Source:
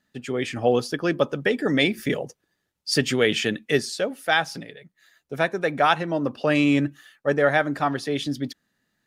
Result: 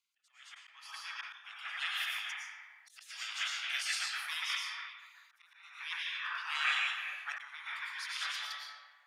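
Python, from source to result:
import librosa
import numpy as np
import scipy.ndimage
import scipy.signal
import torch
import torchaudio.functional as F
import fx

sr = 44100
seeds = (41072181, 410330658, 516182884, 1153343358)

y = fx.comb(x, sr, ms=6.2, depth=0.97, at=(2.24, 3.12))
y = fx.rev_freeverb(y, sr, rt60_s=1.7, hf_ratio=0.5, predelay_ms=70, drr_db=-3.5)
y = fx.auto_swell(y, sr, attack_ms=751.0)
y = fx.high_shelf(y, sr, hz=3400.0, db=-7.0)
y = fx.spec_gate(y, sr, threshold_db=-20, keep='weak')
y = scipy.signal.sosfilt(scipy.signal.cheby2(4, 80, 200.0, 'highpass', fs=sr, output='sos'), y)
y = fx.sustainer(y, sr, db_per_s=73.0)
y = F.gain(torch.from_numpy(y), -2.0).numpy()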